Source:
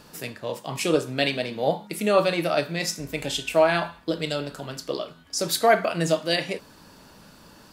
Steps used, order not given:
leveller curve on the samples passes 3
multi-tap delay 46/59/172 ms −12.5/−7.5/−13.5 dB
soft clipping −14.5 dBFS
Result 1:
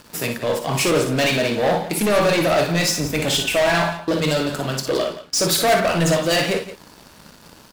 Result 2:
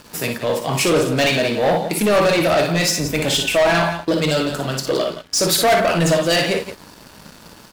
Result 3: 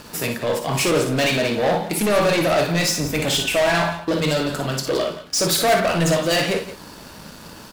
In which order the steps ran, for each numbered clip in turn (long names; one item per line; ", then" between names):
leveller curve on the samples, then soft clipping, then multi-tap delay
soft clipping, then multi-tap delay, then leveller curve on the samples
soft clipping, then leveller curve on the samples, then multi-tap delay